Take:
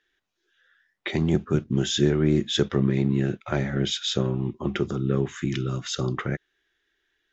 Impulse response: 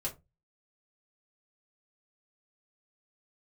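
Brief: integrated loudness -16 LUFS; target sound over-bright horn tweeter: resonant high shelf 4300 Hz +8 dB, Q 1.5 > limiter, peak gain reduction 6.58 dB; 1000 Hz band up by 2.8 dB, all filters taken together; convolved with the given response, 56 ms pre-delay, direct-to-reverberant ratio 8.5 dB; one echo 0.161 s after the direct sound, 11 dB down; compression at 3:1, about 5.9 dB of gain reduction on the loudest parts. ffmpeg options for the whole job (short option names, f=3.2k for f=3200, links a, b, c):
-filter_complex "[0:a]equalizer=f=1k:t=o:g=4.5,acompressor=threshold=-23dB:ratio=3,aecho=1:1:161:0.282,asplit=2[a][b];[1:a]atrim=start_sample=2205,adelay=56[c];[b][c]afir=irnorm=-1:irlink=0,volume=-10.5dB[d];[a][d]amix=inputs=2:normalize=0,highshelf=f=4.3k:t=q:w=1.5:g=8,volume=12dB,alimiter=limit=-5dB:level=0:latency=1"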